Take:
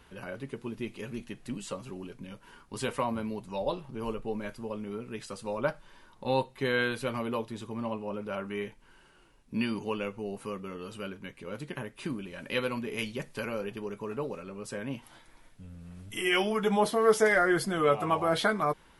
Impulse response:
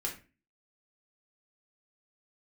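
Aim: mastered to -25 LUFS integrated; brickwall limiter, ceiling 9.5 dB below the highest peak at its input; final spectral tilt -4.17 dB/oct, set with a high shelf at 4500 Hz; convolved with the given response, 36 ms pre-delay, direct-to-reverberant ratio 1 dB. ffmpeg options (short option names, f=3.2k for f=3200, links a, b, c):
-filter_complex "[0:a]highshelf=f=4.5k:g=7,alimiter=limit=-20dB:level=0:latency=1,asplit=2[a][b];[1:a]atrim=start_sample=2205,adelay=36[c];[b][c]afir=irnorm=-1:irlink=0,volume=-3.5dB[d];[a][d]amix=inputs=2:normalize=0,volume=6.5dB"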